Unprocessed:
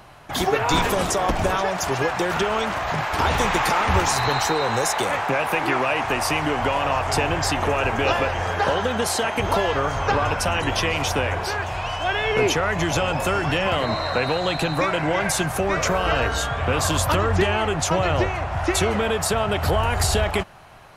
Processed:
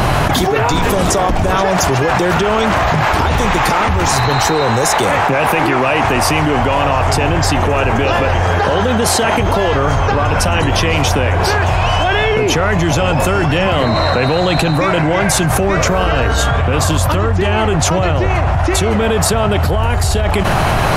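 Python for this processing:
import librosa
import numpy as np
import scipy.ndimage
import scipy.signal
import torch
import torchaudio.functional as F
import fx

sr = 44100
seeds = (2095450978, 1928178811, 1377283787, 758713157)

y = fx.low_shelf(x, sr, hz=380.0, db=7.0)
y = fx.env_flatten(y, sr, amount_pct=100)
y = F.gain(torch.from_numpy(y), -2.5).numpy()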